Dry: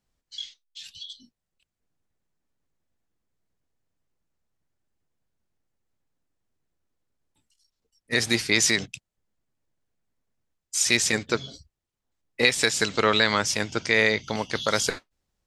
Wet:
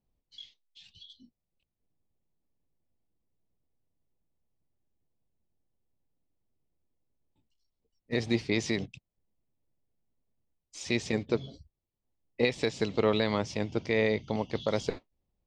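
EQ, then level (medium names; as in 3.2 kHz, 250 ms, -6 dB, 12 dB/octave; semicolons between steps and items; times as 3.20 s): tape spacing loss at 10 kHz 30 dB; peaking EQ 1.5 kHz -13 dB 0.77 oct; 0.0 dB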